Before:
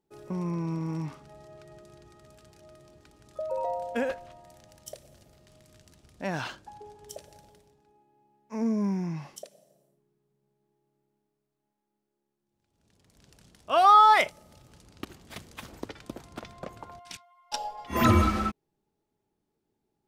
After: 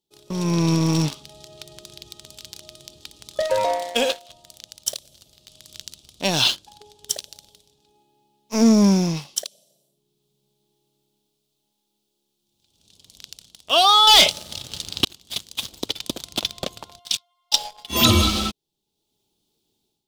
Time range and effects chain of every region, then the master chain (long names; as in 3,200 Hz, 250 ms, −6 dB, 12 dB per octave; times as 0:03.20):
0:03.42–0:04.29: high-pass filter 330 Hz + flutter between parallel walls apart 10 metres, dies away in 0.23 s
0:14.07–0:15.05: parametric band 76 Hz +15 dB 2.6 octaves + mid-hump overdrive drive 23 dB, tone 4,000 Hz, clips at −9.5 dBFS
whole clip: high shelf with overshoot 2,500 Hz +11.5 dB, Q 3; leveller curve on the samples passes 2; automatic gain control gain up to 11.5 dB; level −4 dB